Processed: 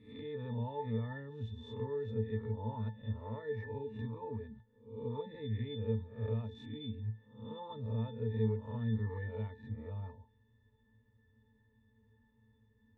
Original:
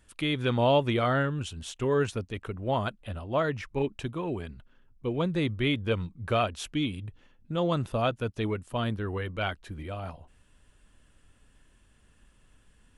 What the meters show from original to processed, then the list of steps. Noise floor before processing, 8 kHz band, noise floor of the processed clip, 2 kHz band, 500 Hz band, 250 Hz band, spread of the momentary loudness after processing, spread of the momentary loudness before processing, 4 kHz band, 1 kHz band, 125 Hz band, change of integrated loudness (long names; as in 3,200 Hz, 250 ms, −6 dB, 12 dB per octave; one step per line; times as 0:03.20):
−63 dBFS, below −30 dB, −71 dBFS, −18.0 dB, −11.5 dB, −10.0 dB, 9 LU, 12 LU, −18.0 dB, −16.0 dB, −5.0 dB, −10.0 dB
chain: peak hold with a rise ahead of every peak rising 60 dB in 0.57 s
high-shelf EQ 8,300 Hz −11.5 dB
downward compressor 4 to 1, threshold −29 dBFS, peak gain reduction 9.5 dB
resonances in every octave A, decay 0.22 s
level +5.5 dB